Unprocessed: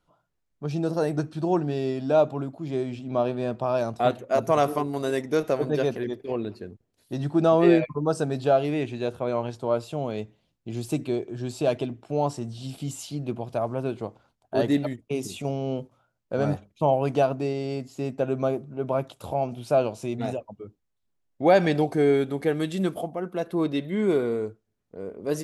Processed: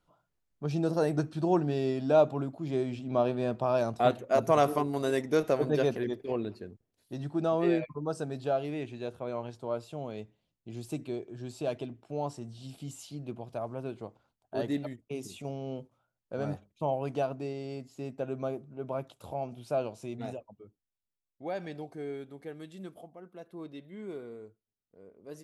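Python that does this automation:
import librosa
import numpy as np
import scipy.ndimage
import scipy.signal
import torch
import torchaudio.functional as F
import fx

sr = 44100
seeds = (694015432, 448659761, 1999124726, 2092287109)

y = fx.gain(x, sr, db=fx.line((6.22, -2.5), (7.33, -9.0), (20.29, -9.0), (21.45, -18.0)))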